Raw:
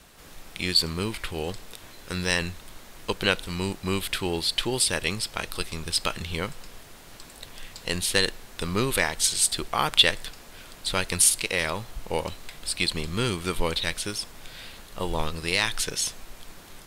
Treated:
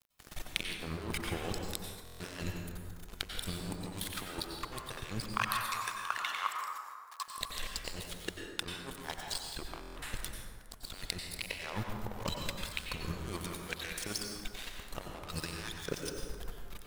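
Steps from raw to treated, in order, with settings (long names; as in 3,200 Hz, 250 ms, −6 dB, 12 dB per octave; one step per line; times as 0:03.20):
reverb reduction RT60 1.6 s
compressor whose output falls as the input rises −37 dBFS, ratio −1
dead-zone distortion −37 dBFS
0:05.22–0:07.28: high-pass with resonance 1,100 Hz, resonance Q 7.7
dense smooth reverb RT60 1.8 s, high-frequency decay 0.45×, pre-delay 80 ms, DRR 1 dB
buffer that repeats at 0:02.04/0:09.80, samples 1,024, times 6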